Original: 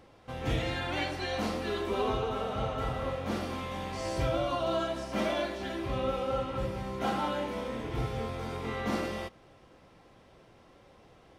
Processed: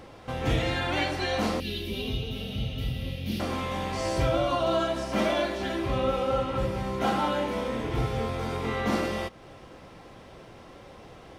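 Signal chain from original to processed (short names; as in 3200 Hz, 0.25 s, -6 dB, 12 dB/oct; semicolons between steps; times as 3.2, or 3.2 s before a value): 1.6–3.4 EQ curve 190 Hz 0 dB, 1200 Hz -28 dB, 2800 Hz +2 dB, 5100 Hz 0 dB, 7600 Hz -11 dB, 12000 Hz +7 dB; in parallel at +1 dB: compressor, threshold -46 dBFS, peak gain reduction 19 dB; on the sum: gain +3.5 dB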